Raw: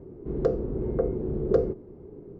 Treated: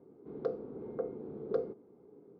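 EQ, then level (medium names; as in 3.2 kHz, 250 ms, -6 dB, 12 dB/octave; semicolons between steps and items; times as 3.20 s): cabinet simulation 310–4300 Hz, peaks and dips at 360 Hz -9 dB, 600 Hz -7 dB, 1 kHz -3 dB, 1.8 kHz -8 dB, 2.8 kHz -8 dB; -5.0 dB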